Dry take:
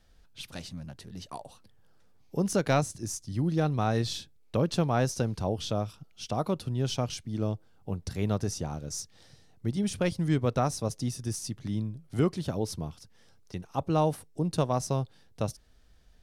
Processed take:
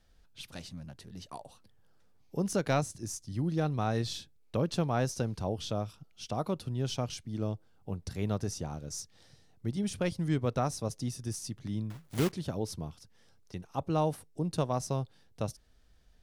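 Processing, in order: 11.9–12.34 block floating point 3-bit; gain -3.5 dB

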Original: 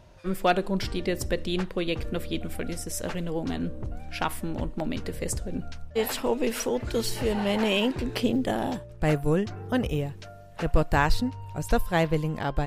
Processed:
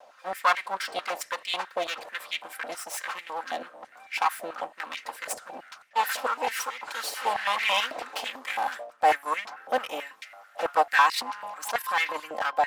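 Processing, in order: minimum comb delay 3.8 ms; 11.01–12.16 transient shaper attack -8 dB, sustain +8 dB; stepped high-pass 9.1 Hz 660–2100 Hz

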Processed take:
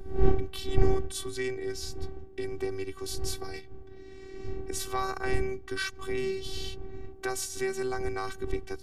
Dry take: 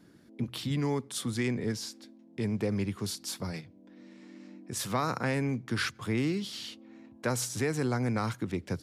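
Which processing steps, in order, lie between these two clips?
recorder AGC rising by 6.2 dB/s; wind noise 140 Hz -28 dBFS; robotiser 382 Hz; gain +1 dB

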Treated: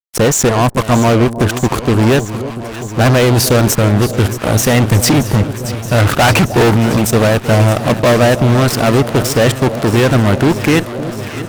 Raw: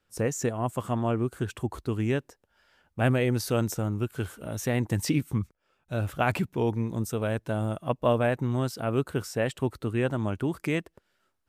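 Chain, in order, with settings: 5.98–6.74 bell 1200 Hz +9.5 dB 2.9 oct; in parallel at -2.5 dB: level quantiser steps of 21 dB; on the sum: fuzz box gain 32 dB, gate -36 dBFS; echo with dull and thin repeats by turns 0.312 s, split 880 Hz, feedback 87%, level -12 dB; gain +6 dB

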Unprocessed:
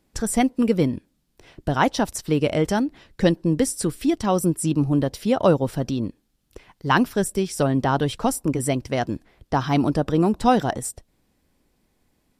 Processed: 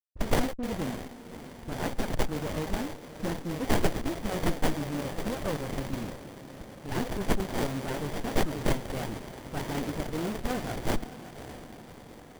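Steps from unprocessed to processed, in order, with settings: bit-crush 6-bit; soft clip -13.5 dBFS, distortion -14 dB; pre-emphasis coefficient 0.9; dispersion highs, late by 49 ms, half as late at 1200 Hz; on a send: diffused feedback echo 0.593 s, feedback 65%, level -13 dB; on the sum: running maximum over 33 samples; gain +8 dB

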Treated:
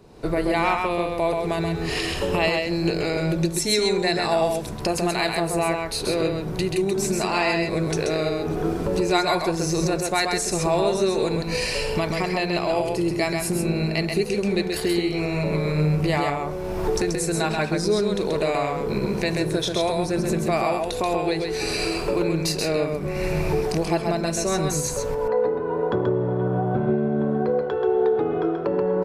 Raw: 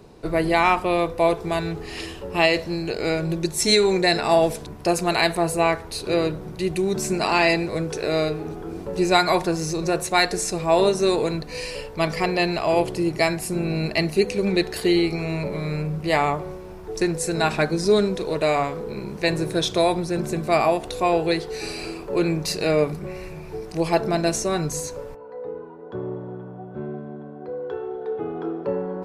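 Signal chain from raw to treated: recorder AGC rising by 35 dB/s; echo 0.132 s -4 dB; gain -4.5 dB

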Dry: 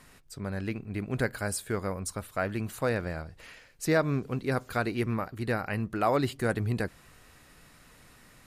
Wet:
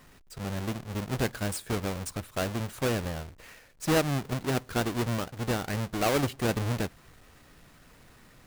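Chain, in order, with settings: half-waves squared off; gain -4.5 dB

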